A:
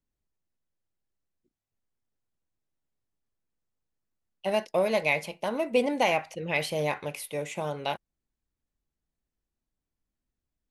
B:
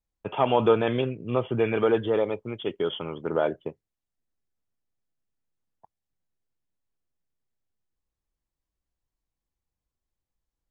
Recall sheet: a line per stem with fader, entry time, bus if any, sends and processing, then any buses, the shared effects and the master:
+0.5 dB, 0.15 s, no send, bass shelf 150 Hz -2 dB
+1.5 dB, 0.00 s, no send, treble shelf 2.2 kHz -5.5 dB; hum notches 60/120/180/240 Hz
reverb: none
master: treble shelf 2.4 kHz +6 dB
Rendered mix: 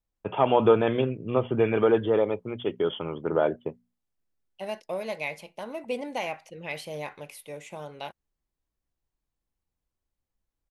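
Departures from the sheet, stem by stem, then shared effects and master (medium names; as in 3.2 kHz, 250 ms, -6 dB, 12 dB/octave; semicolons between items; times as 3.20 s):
stem A +0.5 dB -> -7.0 dB; master: missing treble shelf 2.4 kHz +6 dB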